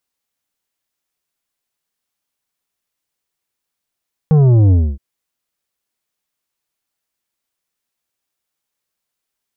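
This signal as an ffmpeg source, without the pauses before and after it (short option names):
-f lavfi -i "aevalsrc='0.398*clip((0.67-t)/0.26,0,1)*tanh(2.82*sin(2*PI*160*0.67/log(65/160)*(exp(log(65/160)*t/0.67)-1)))/tanh(2.82)':d=0.67:s=44100"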